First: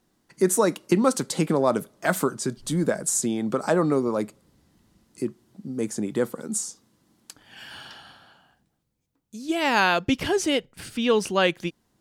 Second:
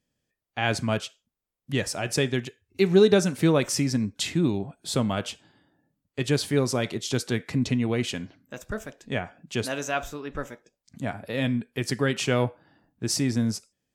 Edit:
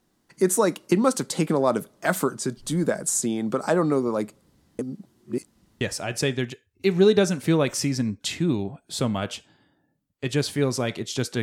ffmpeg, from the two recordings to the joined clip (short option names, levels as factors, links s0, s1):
-filter_complex "[0:a]apad=whole_dur=11.42,atrim=end=11.42,asplit=2[s0][s1];[s0]atrim=end=4.792[s2];[s1]atrim=start=4.788:end=5.812,asetpts=PTS-STARTPTS,areverse[s3];[1:a]atrim=start=1.758:end=7.37[s4];[s2][s3]acrossfade=d=0.004:c1=hsin:c2=hsin[s5];[s5][s4]acrossfade=d=0.004:c1=hsin:c2=hsin"